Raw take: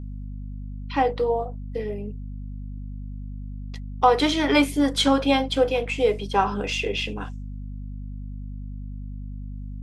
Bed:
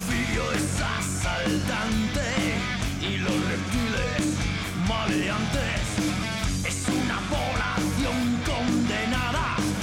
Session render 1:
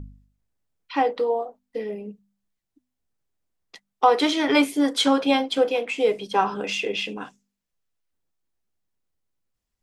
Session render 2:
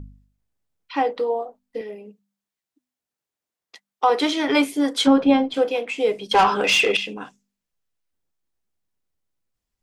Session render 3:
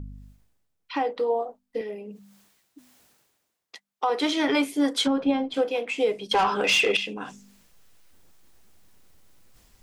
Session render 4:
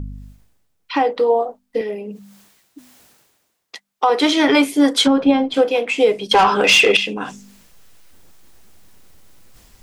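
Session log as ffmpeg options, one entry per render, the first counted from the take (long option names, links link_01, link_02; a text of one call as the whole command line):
ffmpeg -i in.wav -af "bandreject=frequency=50:width_type=h:width=4,bandreject=frequency=100:width_type=h:width=4,bandreject=frequency=150:width_type=h:width=4,bandreject=frequency=200:width_type=h:width=4,bandreject=frequency=250:width_type=h:width=4" out.wav
ffmpeg -i in.wav -filter_complex "[0:a]asettb=1/sr,asplit=3[link_01][link_02][link_03];[link_01]atrim=end=1.814[link_04];[link_02]atrim=start=1.81:end=4.1,asetpts=PTS-STARTPTS,afade=type=in:duration=0.004:curve=qsin,afade=type=out:start_time=2.286:duration=0.004:curve=qsin,highpass=frequency=460:poles=1[link_05];[link_03]atrim=start=4.096[link_06];[link_04][link_05]acrossfade=duration=0.004:curve1=hsin:curve2=qsin[link_07];[link_07][link_06]acrossfade=duration=0.004:curve1=qsin:curve2=hsin,asplit=3[link_08][link_09][link_10];[link_08]afade=type=out:start_time=5.06:duration=0.02[link_11];[link_09]aemphasis=mode=reproduction:type=riaa,afade=type=in:start_time=5.06:duration=0.02,afade=type=out:start_time=5.53:duration=0.02[link_12];[link_10]afade=type=in:start_time=5.53:duration=0.02[link_13];[link_11][link_12][link_13]amix=inputs=3:normalize=0,asettb=1/sr,asplit=3[link_14][link_15][link_16];[link_14]atrim=end=6.314[link_17];[link_15]atrim=start=6.31:end=6.97,asetpts=PTS-STARTPTS,afade=type=in:duration=0.004:curve=qsin,afade=type=out:start_time=0.656:duration=0.004:curve=qsin,asplit=2[link_18][link_19];[link_19]highpass=frequency=720:poles=1,volume=19dB,asoftclip=type=tanh:threshold=-7dB[link_20];[link_18][link_20]amix=inputs=2:normalize=0,lowpass=frequency=7900:poles=1,volume=-6dB[link_21];[link_16]atrim=start=6.966[link_22];[link_17][link_21]acrossfade=duration=0.004:curve1=hsin:curve2=qsin[link_23];[link_23][link_22]acrossfade=duration=0.004:curve1=qsin:curve2=hsin" out.wav
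ffmpeg -i in.wav -af "alimiter=limit=-14dB:level=0:latency=1:release=432,areverse,acompressor=mode=upward:threshold=-35dB:ratio=2.5,areverse" out.wav
ffmpeg -i in.wav -af "volume=9dB" out.wav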